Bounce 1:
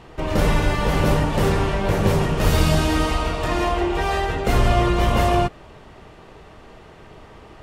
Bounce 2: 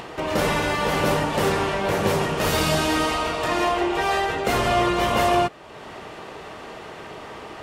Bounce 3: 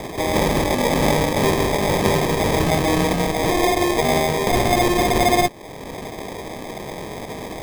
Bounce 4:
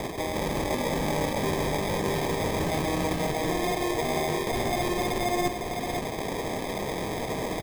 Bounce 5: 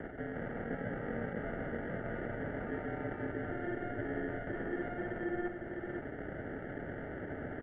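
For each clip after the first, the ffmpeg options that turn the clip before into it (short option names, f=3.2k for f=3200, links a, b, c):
-filter_complex "[0:a]highpass=f=360:p=1,asplit=2[a][b];[b]acompressor=mode=upward:threshold=-25dB:ratio=2.5,volume=2.5dB[c];[a][c]amix=inputs=2:normalize=0,volume=-5.5dB"
-filter_complex "[0:a]asplit=2[a][b];[b]alimiter=limit=-19dB:level=0:latency=1:release=200,volume=0.5dB[c];[a][c]amix=inputs=2:normalize=0,acrusher=samples=31:mix=1:aa=0.000001"
-af "areverse,acompressor=threshold=-26dB:ratio=6,areverse,aecho=1:1:506:0.531"
-af "highpass=f=500:t=q:w=0.5412,highpass=f=500:t=q:w=1.307,lowpass=f=2.3k:t=q:w=0.5176,lowpass=f=2.3k:t=q:w=0.7071,lowpass=f=2.3k:t=q:w=1.932,afreqshift=-360,volume=-7dB"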